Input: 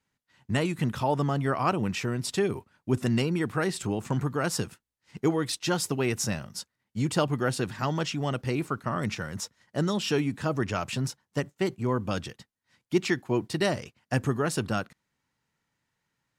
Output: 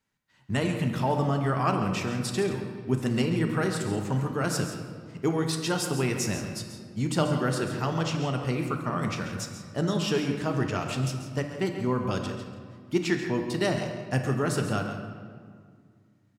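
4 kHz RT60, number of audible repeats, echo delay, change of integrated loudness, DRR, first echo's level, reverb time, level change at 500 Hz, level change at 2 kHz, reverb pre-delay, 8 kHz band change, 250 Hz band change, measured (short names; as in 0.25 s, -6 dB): 1.2 s, 2, 0.136 s, +0.5 dB, 3.0 dB, -11.5 dB, 2.0 s, +0.5 dB, 0.0 dB, 4 ms, -0.5 dB, +1.0 dB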